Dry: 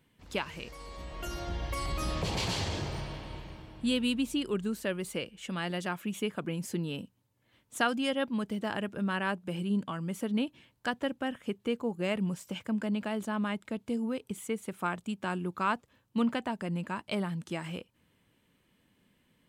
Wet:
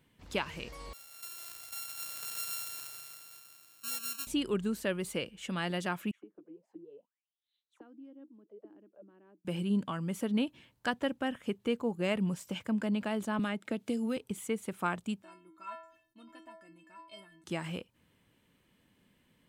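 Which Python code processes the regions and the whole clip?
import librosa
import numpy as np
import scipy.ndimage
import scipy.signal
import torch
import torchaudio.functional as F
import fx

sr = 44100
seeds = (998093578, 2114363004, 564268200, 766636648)

y = fx.chain(x, sr, fx.sample_sort(block=32),
    fx.differentiator(), at=(0.93, 4.27))
y = fx.chain(y, sr, fx.low_shelf(hz=340.0, db=-7.5),
    fx.auto_wah(base_hz=310.0, top_hz=4200.0, q=16.0, full_db=-33.5, direction='down'), at=(6.11, 9.45))
y = fx.chain(y, sr, fx.highpass(hz=170.0, slope=12),
    fx.peak_eq(hz=1000.0, db=-8.5, octaves=0.26),
    fx.band_squash(depth_pct=100), at=(13.39, 14.17))
y = fx.chain(y, sr, fx.stiff_resonator(f0_hz=320.0, decay_s=0.39, stiffness=0.008),
    fx.sustainer(db_per_s=100.0), at=(15.22, 17.44))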